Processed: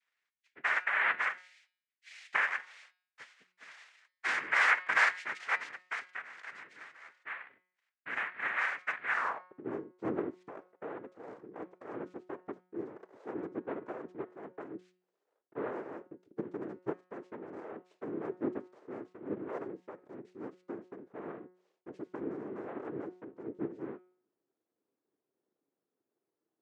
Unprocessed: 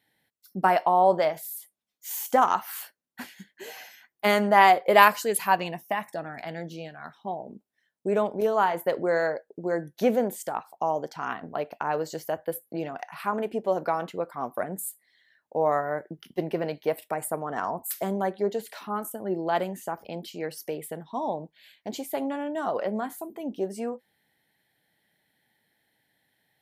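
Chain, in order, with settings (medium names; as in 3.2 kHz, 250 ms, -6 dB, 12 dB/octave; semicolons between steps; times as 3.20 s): noise-vocoded speech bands 3; band-pass sweep 2 kHz -> 360 Hz, 9.10–9.61 s; de-hum 182 Hz, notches 28; trim -3.5 dB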